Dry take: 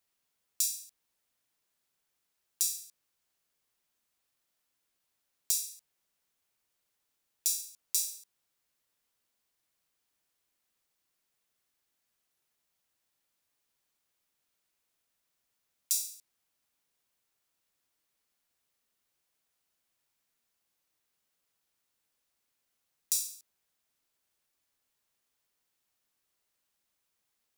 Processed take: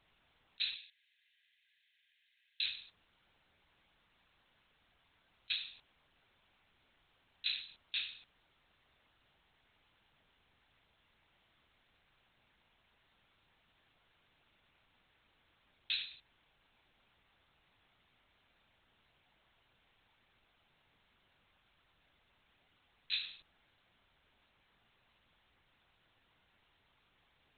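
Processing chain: 0.75–2.65 s: steep high-pass 1.6 kHz 96 dB/octave; LPC vocoder at 8 kHz whisper; trim +15 dB

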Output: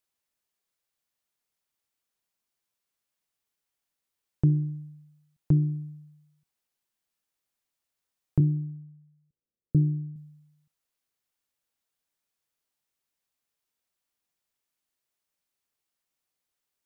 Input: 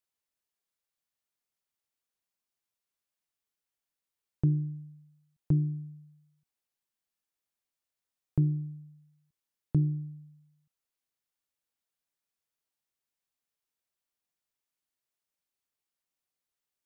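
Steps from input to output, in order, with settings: 8.40–10.16 s: elliptic low-pass 540 Hz; on a send: thinning echo 64 ms, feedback 72%, high-pass 350 Hz, level -22 dB; on the sum: trim +4 dB

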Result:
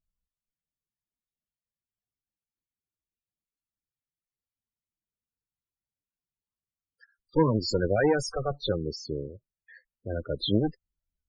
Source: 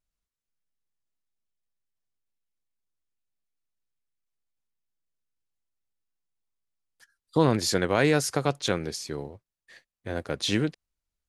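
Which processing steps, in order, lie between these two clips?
wow and flutter 17 cents; Chebyshev shaper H 2 -19 dB, 5 -28 dB, 6 -14 dB, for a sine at -7 dBFS; loudest bins only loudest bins 16

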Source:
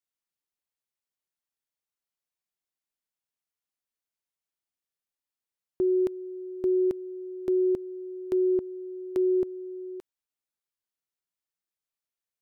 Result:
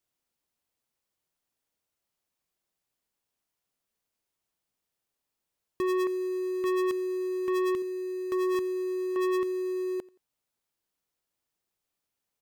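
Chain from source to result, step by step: 7.82–8.55 s: peaking EQ 230 Hz -6 dB 1.7 oct; in parallel at -11 dB: sample-and-hold 20×; on the sum: saturation -32 dBFS, distortion -5 dB; feedback delay 87 ms, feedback 33%, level -23 dB; trim +6 dB

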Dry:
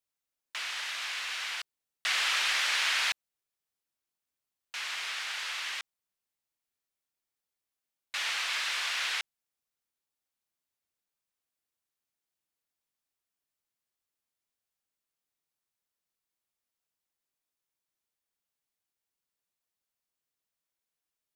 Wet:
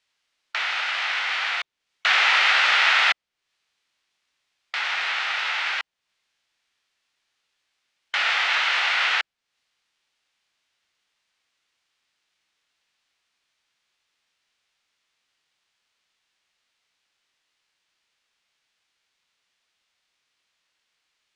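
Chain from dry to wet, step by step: low-pass 3.7 kHz 12 dB/octave; formant shift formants -4 st; treble shelf 2.4 kHz +11.5 dB; tape noise reduction on one side only encoder only; trim +7 dB

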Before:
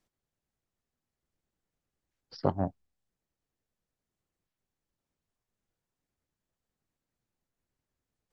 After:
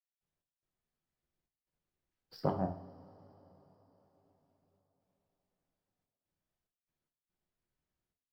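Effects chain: median filter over 5 samples; trance gate ".x.xxxx.xxxxx.xx" 72 bpm; two-slope reverb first 0.54 s, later 4.7 s, from -21 dB, DRR 3.5 dB; trim -5 dB

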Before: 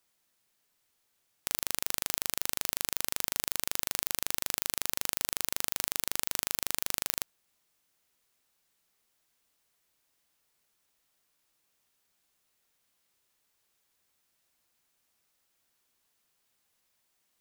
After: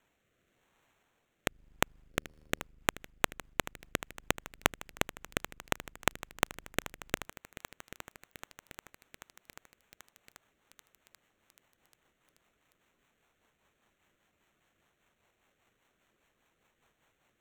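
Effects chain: octave divider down 1 oct, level -6 dB; 2.10–2.64 s: de-hum 74.74 Hz, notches 7; in parallel at -1 dB: compression 6:1, threshold -42 dBFS, peak gain reduction 17 dB; on the sum: sample-and-hold 9×; rotary cabinet horn 0.9 Hz, later 5 Hz, at 1.83 s; bit-crushed delay 786 ms, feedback 80%, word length 5-bit, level -14.5 dB; trim -2 dB

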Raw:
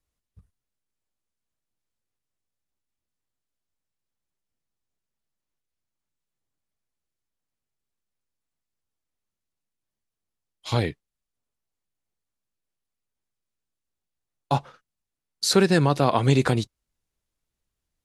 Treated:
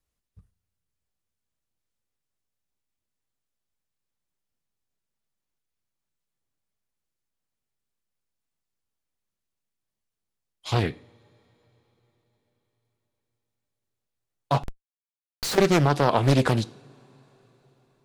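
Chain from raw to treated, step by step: two-slope reverb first 0.5 s, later 4.7 s, from -22 dB, DRR 15.5 dB; 14.63–15.58 s: Schmitt trigger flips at -35 dBFS; loudspeaker Doppler distortion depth 0.79 ms

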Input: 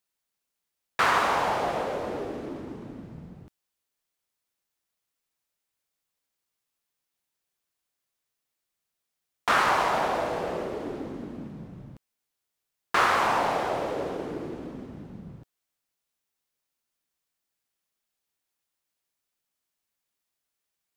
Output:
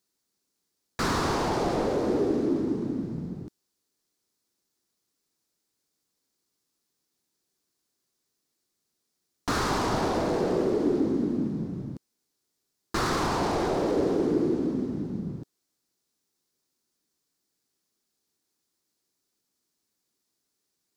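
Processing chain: overdrive pedal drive 22 dB, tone 1.2 kHz, clips at -10 dBFS; high-order bell 1.3 kHz -15.5 dB 3 oct; trim +5 dB

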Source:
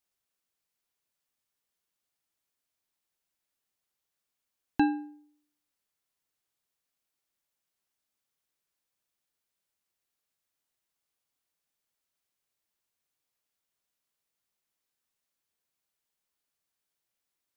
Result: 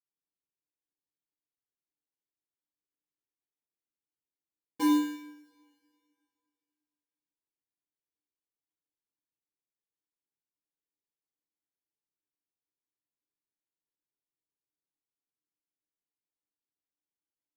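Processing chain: vowel filter u; sample-rate reducer 1.3 kHz, jitter 0%; two-slope reverb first 0.73 s, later 2.5 s, from -25 dB, DRR -6.5 dB; trim -8 dB

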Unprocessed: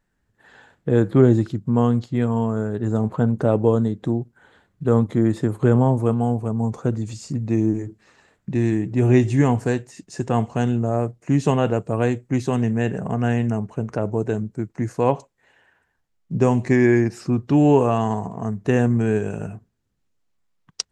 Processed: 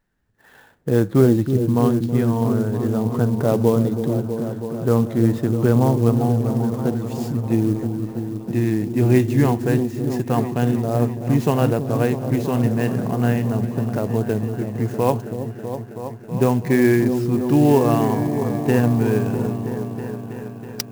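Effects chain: on a send: delay with an opening low-pass 324 ms, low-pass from 400 Hz, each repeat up 1 oct, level -6 dB; on the sum: sampling jitter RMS 0.025 ms

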